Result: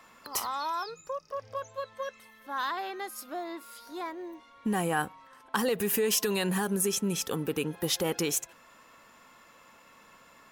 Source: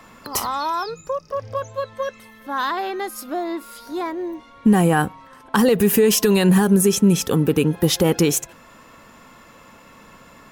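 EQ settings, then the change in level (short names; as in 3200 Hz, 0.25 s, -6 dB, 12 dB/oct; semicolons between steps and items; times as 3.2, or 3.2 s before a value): low shelf 370 Hz -11 dB; -7.5 dB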